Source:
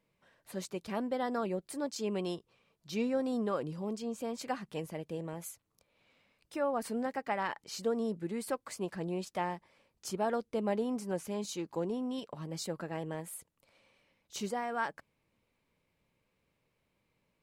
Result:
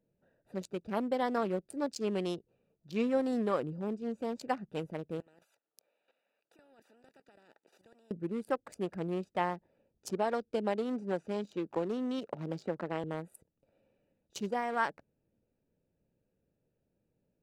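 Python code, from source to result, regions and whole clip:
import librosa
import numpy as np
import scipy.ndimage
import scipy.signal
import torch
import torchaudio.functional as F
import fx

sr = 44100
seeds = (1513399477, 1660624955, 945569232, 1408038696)

y = fx.chain(x, sr, fx.highpass(hz=860.0, slope=12),
    fx.level_steps(step_db=14),
    fx.spectral_comp(ratio=4.0), at=(5.2, 8.11))
y = fx.chain(y, sr, fx.lowpass(hz=7500.0, slope=12),
    fx.low_shelf(hz=200.0, db=-6.0),
    fx.band_squash(depth_pct=70), at=(10.09, 13.04))
y = fx.wiener(y, sr, points=41)
y = fx.low_shelf(y, sr, hz=210.0, db=-5.0)
y = y * librosa.db_to_amplitude(4.0)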